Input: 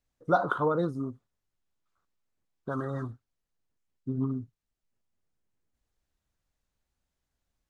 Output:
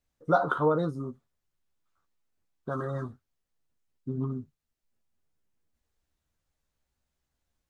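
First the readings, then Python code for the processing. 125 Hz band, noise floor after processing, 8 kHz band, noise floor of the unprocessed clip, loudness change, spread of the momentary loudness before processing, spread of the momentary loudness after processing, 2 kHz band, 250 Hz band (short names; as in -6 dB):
+1.0 dB, -84 dBFS, n/a, under -85 dBFS, +1.0 dB, 15 LU, 16 LU, +0.5 dB, -1.0 dB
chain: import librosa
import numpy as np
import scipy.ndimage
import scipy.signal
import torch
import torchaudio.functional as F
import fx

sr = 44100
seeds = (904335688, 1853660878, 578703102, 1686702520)

y = fx.doubler(x, sr, ms=13.0, db=-7.0)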